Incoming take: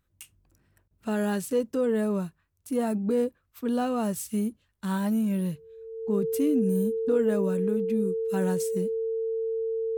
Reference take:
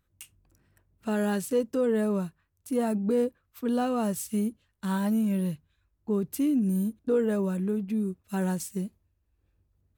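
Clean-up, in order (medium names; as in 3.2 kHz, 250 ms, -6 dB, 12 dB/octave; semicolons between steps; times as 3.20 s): band-stop 450 Hz, Q 30; interpolate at 0.88 s, 27 ms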